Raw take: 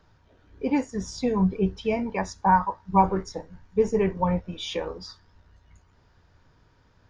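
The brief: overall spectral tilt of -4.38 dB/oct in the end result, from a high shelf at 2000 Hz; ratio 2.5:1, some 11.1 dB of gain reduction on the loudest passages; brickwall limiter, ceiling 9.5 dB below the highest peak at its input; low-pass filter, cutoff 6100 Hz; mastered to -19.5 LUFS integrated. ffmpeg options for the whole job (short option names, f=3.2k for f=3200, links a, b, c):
-af "lowpass=6.1k,highshelf=f=2k:g=8.5,acompressor=threshold=-30dB:ratio=2.5,volume=17dB,alimiter=limit=-9.5dB:level=0:latency=1"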